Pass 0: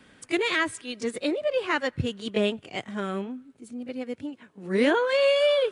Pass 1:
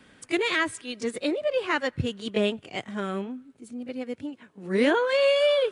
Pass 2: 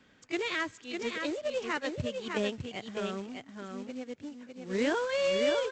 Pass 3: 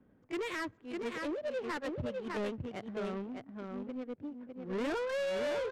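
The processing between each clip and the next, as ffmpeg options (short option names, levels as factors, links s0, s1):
-af anull
-af "aresample=16000,acrusher=bits=4:mode=log:mix=0:aa=0.000001,aresample=44100,aecho=1:1:604:0.562,volume=0.422"
-af "asoftclip=type=tanh:threshold=0.0266,adynamicsmooth=sensitivity=7:basefreq=630,volume=1.12"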